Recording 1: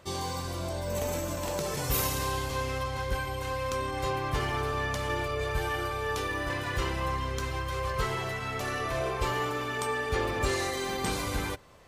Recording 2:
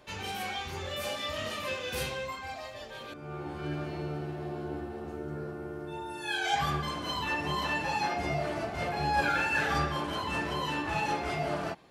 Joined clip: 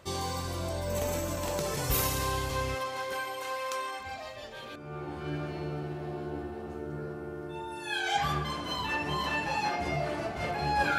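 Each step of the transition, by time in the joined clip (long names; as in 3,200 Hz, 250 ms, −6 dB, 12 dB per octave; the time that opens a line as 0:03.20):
recording 1
0:02.74–0:04.04: high-pass filter 270 Hz → 750 Hz
0:04.00: continue with recording 2 from 0:02.38, crossfade 0.08 s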